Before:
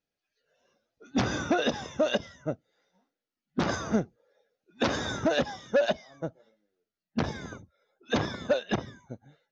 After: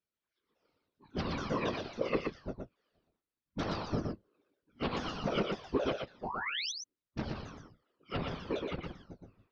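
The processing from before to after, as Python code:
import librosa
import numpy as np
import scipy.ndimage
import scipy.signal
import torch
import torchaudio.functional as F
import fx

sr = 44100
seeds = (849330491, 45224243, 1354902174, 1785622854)

p1 = fx.pitch_ramps(x, sr, semitones=-8.0, every_ms=276)
p2 = fx.spec_paint(p1, sr, seeds[0], shape='rise', start_s=6.23, length_s=0.49, low_hz=670.0, high_hz=6400.0, level_db=-31.0)
p3 = fx.whisperise(p2, sr, seeds[1])
p4 = p3 + fx.echo_single(p3, sr, ms=119, db=-4.0, dry=0)
y = p4 * 10.0 ** (-6.5 / 20.0)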